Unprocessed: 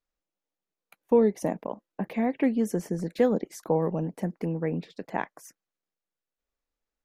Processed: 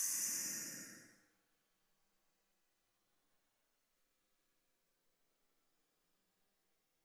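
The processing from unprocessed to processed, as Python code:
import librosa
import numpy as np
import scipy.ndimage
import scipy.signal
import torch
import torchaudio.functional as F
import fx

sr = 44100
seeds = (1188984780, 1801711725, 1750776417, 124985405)

y = fx.paulstretch(x, sr, seeds[0], factor=15.0, window_s=0.1, from_s=5.47)
y = y * librosa.db_to_amplitude(9.0)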